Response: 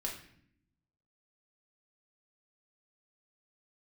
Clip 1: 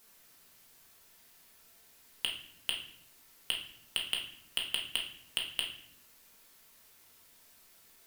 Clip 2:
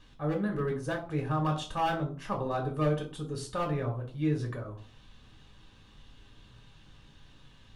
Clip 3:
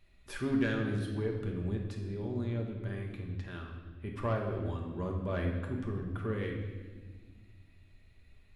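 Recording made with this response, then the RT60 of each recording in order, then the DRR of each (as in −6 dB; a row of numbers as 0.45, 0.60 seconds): 1; 0.65, 0.40, 1.5 seconds; −1.5, 0.5, 0.0 decibels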